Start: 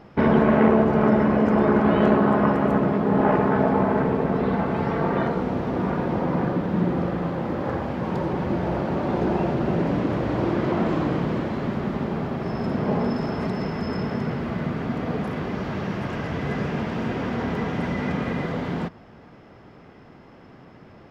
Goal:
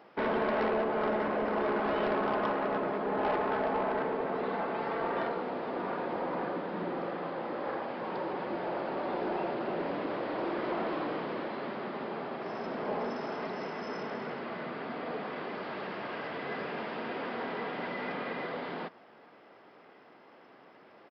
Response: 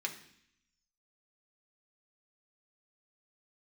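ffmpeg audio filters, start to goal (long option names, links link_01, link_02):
-af "highpass=410,aresample=11025,asoftclip=type=tanh:threshold=-19.5dB,aresample=44100,volume=-4.5dB"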